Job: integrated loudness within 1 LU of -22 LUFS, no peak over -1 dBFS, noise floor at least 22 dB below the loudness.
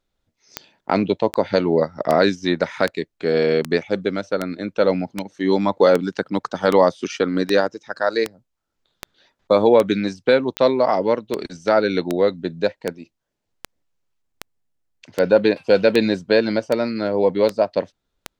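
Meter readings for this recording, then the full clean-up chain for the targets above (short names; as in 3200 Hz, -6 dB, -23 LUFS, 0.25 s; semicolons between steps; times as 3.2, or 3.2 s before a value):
clicks 24; loudness -20.0 LUFS; peak -2.0 dBFS; loudness target -22.0 LUFS
-> de-click; gain -2 dB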